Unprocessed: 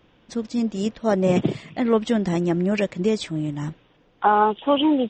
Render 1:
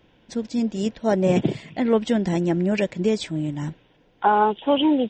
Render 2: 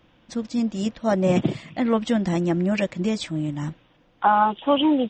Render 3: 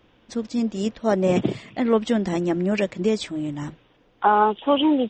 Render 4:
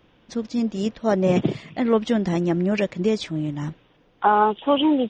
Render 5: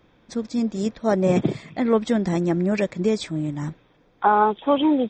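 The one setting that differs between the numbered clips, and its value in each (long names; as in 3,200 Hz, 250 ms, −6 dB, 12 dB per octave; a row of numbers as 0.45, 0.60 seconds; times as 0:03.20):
notch filter, centre frequency: 1,200, 420, 160, 7,700, 2,900 Hertz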